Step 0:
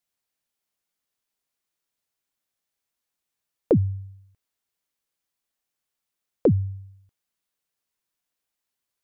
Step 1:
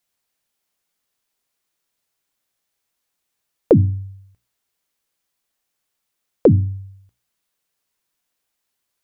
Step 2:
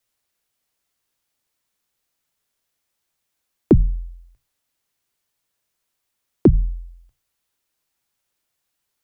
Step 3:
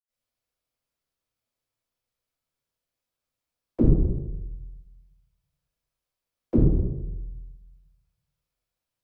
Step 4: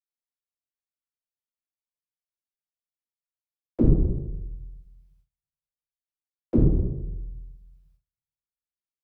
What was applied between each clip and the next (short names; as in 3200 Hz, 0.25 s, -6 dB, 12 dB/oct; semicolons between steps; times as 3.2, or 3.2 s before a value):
notches 60/120/180/240/300 Hz; gain +7 dB
frequency shift -140 Hz
reverb RT60 1.0 s, pre-delay 77 ms; gain +3 dB
gate with hold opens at -54 dBFS